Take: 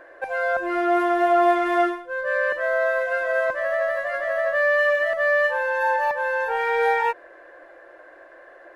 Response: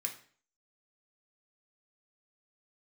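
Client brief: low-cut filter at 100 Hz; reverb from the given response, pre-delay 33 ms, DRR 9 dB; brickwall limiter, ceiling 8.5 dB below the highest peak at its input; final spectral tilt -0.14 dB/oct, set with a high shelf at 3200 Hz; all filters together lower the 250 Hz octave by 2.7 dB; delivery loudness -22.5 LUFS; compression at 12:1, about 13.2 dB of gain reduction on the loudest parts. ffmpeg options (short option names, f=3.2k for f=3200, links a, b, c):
-filter_complex "[0:a]highpass=100,equalizer=f=250:t=o:g=-5,highshelf=f=3.2k:g=-8,acompressor=threshold=-29dB:ratio=12,alimiter=level_in=5.5dB:limit=-24dB:level=0:latency=1,volume=-5.5dB,asplit=2[a][b];[1:a]atrim=start_sample=2205,adelay=33[c];[b][c]afir=irnorm=-1:irlink=0,volume=-9dB[d];[a][d]amix=inputs=2:normalize=0,volume=13.5dB"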